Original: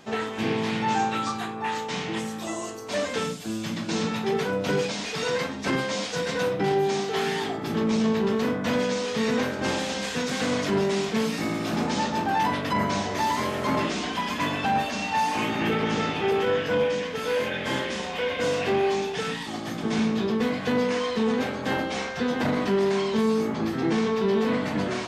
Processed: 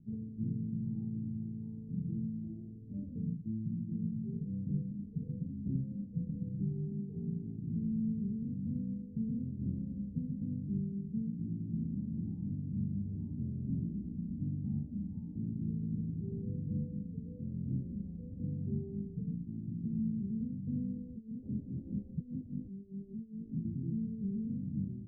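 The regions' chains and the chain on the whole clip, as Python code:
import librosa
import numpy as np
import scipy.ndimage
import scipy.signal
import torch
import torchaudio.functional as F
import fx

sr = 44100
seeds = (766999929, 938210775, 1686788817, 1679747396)

y = fx.chain(x, sr, fx.moving_average(points=23),
    fx.over_compress(threshold_db=-31.0, ratio=-1.0),
    fx.stagger_phaser(hz=4.9), at=(21.16, 23.65))
y = scipy.signal.sosfilt(scipy.signal.cheby2(4, 80, 1100.0, 'lowpass', fs=sr, output='sos'), y)
y = fx.rider(y, sr, range_db=3, speed_s=0.5)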